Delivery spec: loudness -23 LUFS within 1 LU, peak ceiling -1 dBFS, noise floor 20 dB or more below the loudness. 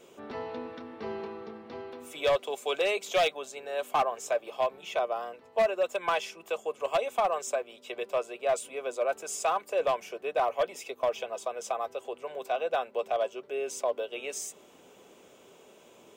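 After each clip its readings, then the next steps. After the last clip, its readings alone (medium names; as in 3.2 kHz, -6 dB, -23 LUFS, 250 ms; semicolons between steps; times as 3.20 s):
clipped samples 0.9%; clipping level -20.0 dBFS; loudness -31.5 LUFS; peak level -20.0 dBFS; loudness target -23.0 LUFS
-> clip repair -20 dBFS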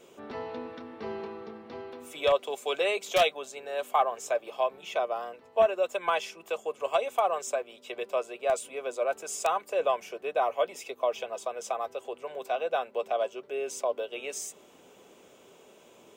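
clipped samples 0.0%; loudness -30.5 LUFS; peak level -11.0 dBFS; loudness target -23.0 LUFS
-> trim +7.5 dB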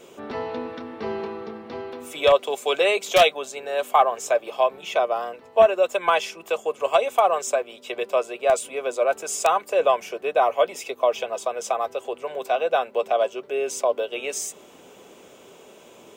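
loudness -23.0 LUFS; peak level -3.5 dBFS; noise floor -49 dBFS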